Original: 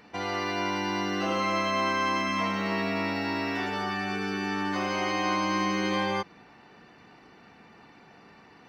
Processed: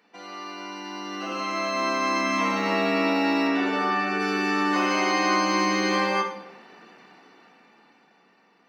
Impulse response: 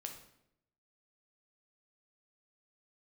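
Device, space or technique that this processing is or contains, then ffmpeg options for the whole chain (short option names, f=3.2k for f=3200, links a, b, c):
far laptop microphone: -filter_complex "[0:a]asettb=1/sr,asplit=3[a][b][c];[a]atrim=end=3.474[d];[b]atrim=start=3.47:end=4.2,asetpts=PTS-STARTPTS,afade=t=in:d=0.004:c=qsin,afade=t=out:st=0.726:d=0.004:c=qsin,lowpass=f=3.2k:p=1[e];[c]atrim=start=4.196[f];[d][e]acrossfade=d=0.004:c1=hsin:c2=qsin[g];[g][f]acrossfade=d=0.004:c1=qsin:c2=hsin[h];[1:a]atrim=start_sample=2205[i];[h][i]afir=irnorm=-1:irlink=0,highpass=f=190:w=0.5412,highpass=f=190:w=1.3066,dynaudnorm=f=210:g=17:m=14dB,lowshelf=f=460:g=-3,volume=-4dB"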